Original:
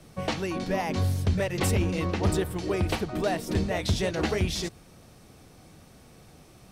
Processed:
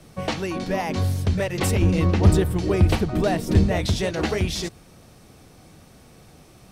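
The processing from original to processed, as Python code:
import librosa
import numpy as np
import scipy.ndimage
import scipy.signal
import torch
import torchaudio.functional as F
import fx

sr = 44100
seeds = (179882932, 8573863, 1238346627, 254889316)

y = fx.low_shelf(x, sr, hz=240.0, db=9.5, at=(1.82, 3.86))
y = y * librosa.db_to_amplitude(3.0)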